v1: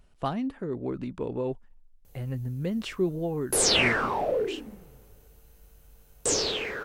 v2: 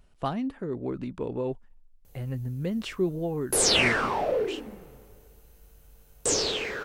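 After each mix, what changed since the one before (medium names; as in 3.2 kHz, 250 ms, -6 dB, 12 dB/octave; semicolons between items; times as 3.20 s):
background: send +6.0 dB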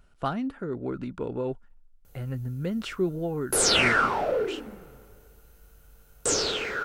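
master: add peaking EQ 1.4 kHz +11.5 dB 0.21 oct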